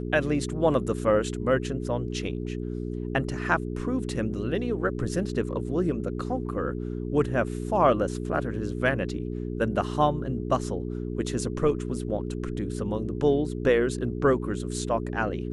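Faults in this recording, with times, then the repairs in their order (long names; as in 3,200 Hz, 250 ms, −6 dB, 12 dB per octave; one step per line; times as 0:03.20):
mains hum 60 Hz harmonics 7 −32 dBFS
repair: hum removal 60 Hz, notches 7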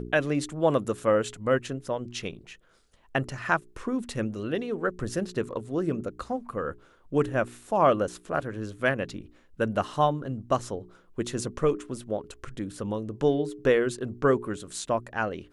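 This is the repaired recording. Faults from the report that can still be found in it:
none of them is left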